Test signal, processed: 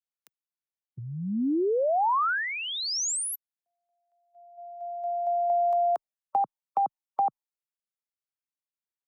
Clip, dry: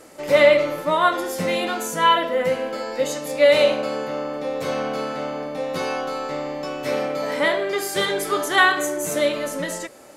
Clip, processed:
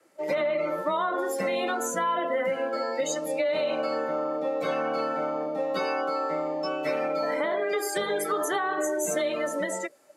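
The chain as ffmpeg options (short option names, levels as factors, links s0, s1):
-filter_complex "[0:a]highpass=f=110:w=0.5412,highpass=f=110:w=1.3066,afftdn=nr=18:nf=-30,equalizer=f=1600:t=o:w=1.4:g=4,acrossover=split=360|1200[s0][s1][s2];[s2]acompressor=threshold=0.0398:ratio=16[s3];[s0][s1][s3]amix=inputs=3:normalize=0,alimiter=limit=0.2:level=0:latency=1:release=66,acrossover=split=270|1300|6900[s4][s5][s6][s7];[s4]acompressor=threshold=0.00794:ratio=4[s8];[s5]acompressor=threshold=0.0501:ratio=4[s9];[s6]acompressor=threshold=0.0158:ratio=4[s10];[s7]acompressor=threshold=0.01:ratio=4[s11];[s8][s9][s10][s11]amix=inputs=4:normalize=0,afreqshift=15,adynamicequalizer=threshold=0.00398:dfrequency=3600:dqfactor=0.7:tfrequency=3600:tqfactor=0.7:attack=5:release=100:ratio=0.375:range=2.5:mode=boostabove:tftype=highshelf"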